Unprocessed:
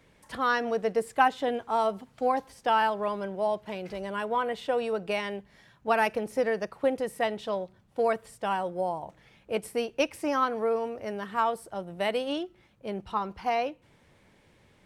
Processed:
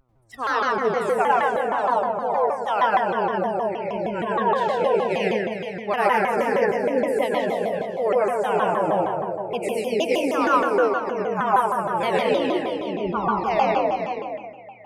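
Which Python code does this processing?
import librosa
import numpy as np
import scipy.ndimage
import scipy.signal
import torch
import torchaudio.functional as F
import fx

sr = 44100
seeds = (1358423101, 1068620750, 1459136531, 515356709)

p1 = fx.reverse_delay_fb(x, sr, ms=183, feedback_pct=77, wet_db=-12)
p2 = fx.rider(p1, sr, range_db=4, speed_s=2.0)
p3 = fx.dmg_buzz(p2, sr, base_hz=120.0, harmonics=11, level_db=-41.0, tilt_db=-4, odd_only=False)
p4 = fx.noise_reduce_blind(p3, sr, reduce_db=29)
p5 = p4 + fx.echo_single(p4, sr, ms=407, db=-9.0, dry=0)
p6 = fx.rev_plate(p5, sr, seeds[0], rt60_s=1.4, hf_ratio=0.4, predelay_ms=85, drr_db=-4.5)
y = fx.vibrato_shape(p6, sr, shape='saw_down', rate_hz=6.4, depth_cents=250.0)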